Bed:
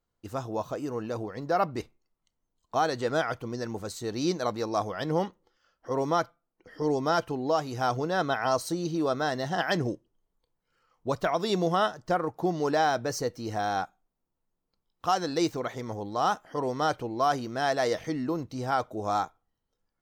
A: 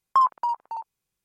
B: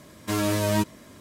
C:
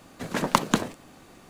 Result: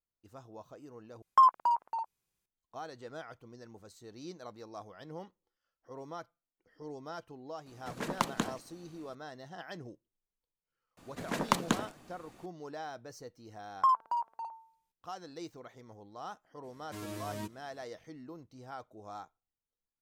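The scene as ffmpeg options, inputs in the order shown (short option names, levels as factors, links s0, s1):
-filter_complex "[1:a]asplit=2[s0][s1];[3:a]asplit=2[s2][s3];[0:a]volume=0.133[s4];[s1]bandreject=f=225:t=h:w=4,bandreject=f=450:t=h:w=4,bandreject=f=675:t=h:w=4,bandreject=f=900:t=h:w=4,bandreject=f=1125:t=h:w=4,bandreject=f=1350:t=h:w=4,bandreject=f=1575:t=h:w=4[s5];[s4]asplit=2[s6][s7];[s6]atrim=end=1.224[s8];[s0]atrim=end=1.24,asetpts=PTS-STARTPTS,volume=0.75[s9];[s7]atrim=start=2.456[s10];[s2]atrim=end=1.49,asetpts=PTS-STARTPTS,volume=0.316,afade=t=in:d=0.004:c=hsin,afade=t=out:st=1.486:d=0.004:c=hsin,adelay=7660[s11];[s3]atrim=end=1.49,asetpts=PTS-STARTPTS,volume=0.447,afade=t=in:d=0.004:c=hsin,afade=t=out:st=1.486:d=0.004:c=hsin,adelay=10970[s12];[s5]atrim=end=1.24,asetpts=PTS-STARTPTS,volume=0.447,afade=t=in:d=0.004:c=hsin,afade=t=out:st=1.236:d=0.004:c=hsin,adelay=13680[s13];[2:a]atrim=end=1.2,asetpts=PTS-STARTPTS,volume=0.133,afade=t=in:d=0.004:c=hsin,afade=t=out:st=1.196:d=0.004:c=hsin,adelay=16640[s14];[s8][s9]acrossfade=d=0.004:c1=hsin:c2=hsin[s15];[s15][s10]acrossfade=d=0.004:c1=hsin:c2=hsin[s16];[s16][s11][s12][s13][s14]amix=inputs=5:normalize=0"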